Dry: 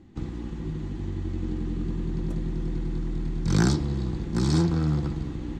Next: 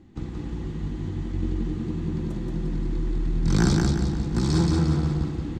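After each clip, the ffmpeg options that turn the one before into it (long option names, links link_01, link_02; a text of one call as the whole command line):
ffmpeg -i in.wav -af "aecho=1:1:177|354|531|708|885:0.708|0.297|0.125|0.0525|0.022" out.wav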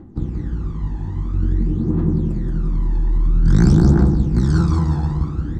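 ffmpeg -i in.wav -af "highshelf=frequency=1800:width_type=q:width=1.5:gain=-7.5,areverse,acompressor=mode=upward:threshold=-34dB:ratio=2.5,areverse,aphaser=in_gain=1:out_gain=1:delay=1.2:decay=0.66:speed=0.5:type=triangular,volume=1.5dB" out.wav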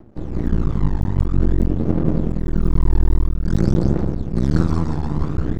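ffmpeg -i in.wav -af "aeval=exprs='max(val(0),0)':channel_layout=same,aeval=exprs='0.891*(cos(1*acos(clip(val(0)/0.891,-1,1)))-cos(1*PI/2))+0.355*(cos(2*acos(clip(val(0)/0.891,-1,1)))-cos(2*PI/2))':channel_layout=same,dynaudnorm=framelen=240:gausssize=3:maxgain=11.5dB,volume=-1dB" out.wav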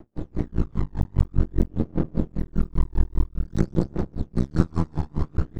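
ffmpeg -i in.wav -af "aeval=exprs='val(0)*pow(10,-32*(0.5-0.5*cos(2*PI*5*n/s))/20)':channel_layout=same" out.wav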